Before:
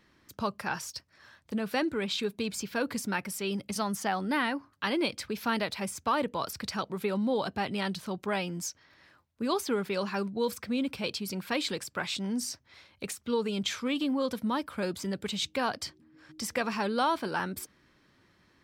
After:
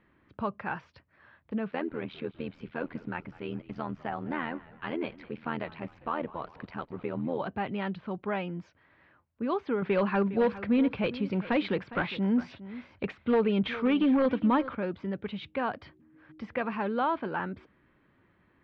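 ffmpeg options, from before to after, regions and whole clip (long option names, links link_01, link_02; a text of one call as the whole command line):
ffmpeg -i in.wav -filter_complex "[0:a]asettb=1/sr,asplit=3[link_01][link_02][link_03];[link_01]atrim=end=1.714[link_04];[link_02]atrim=start=1.71:end=7.4,asetpts=PTS-STARTPTS,afade=type=in:duration=0.004:curve=qsin,afade=type=out:start_time=5.686:duration=0.004:curve=qsin,tremolo=f=82:d=0.889,aeval=exprs='val(0)*gte(abs(val(0)),0.00224)':channel_layout=same,asplit=5[link_05][link_06][link_07][link_08][link_09];[link_06]adelay=201,afreqshift=-60,volume=-19.5dB[link_10];[link_07]adelay=402,afreqshift=-120,volume=-24.9dB[link_11];[link_08]adelay=603,afreqshift=-180,volume=-30.2dB[link_12];[link_09]adelay=804,afreqshift=-240,volume=-35.6dB[link_13];[link_05][link_10][link_11][link_12][link_13]amix=inputs=5:normalize=0,atrim=end_sample=250929[link_14];[link_03]atrim=start=7.396[link_15];[link_04][link_14]acrossfade=duration=0.004:curve1=hsin:curve2=qsin[link_16];[link_16][link_15]acrossfade=duration=0.004:curve1=qsin:curve2=hsin,asettb=1/sr,asplit=3[link_17][link_18][link_19];[link_17]atrim=end=9.824[link_20];[link_18]atrim=start=9.82:end=14.75,asetpts=PTS-STARTPTS,afade=type=in:duration=0.004:curve=qsin,afade=type=out:start_time=4.926:duration=0.004:curve=qsin,acontrast=56,aeval=exprs='0.126*(abs(mod(val(0)/0.126+3,4)-2)-1)':channel_layout=same,aecho=1:1:409:0.168,atrim=end_sample=217413[link_21];[link_19]atrim=start=14.746[link_22];[link_20][link_21]acrossfade=duration=0.004:curve1=hsin:curve2=qsin[link_23];[link_23][link_22]acrossfade=duration=0.004:curve1=qsin:curve2=hsin,lowpass=frequency=3000:width=0.5412,lowpass=frequency=3000:width=1.3066,aemphasis=mode=reproduction:type=75kf" out.wav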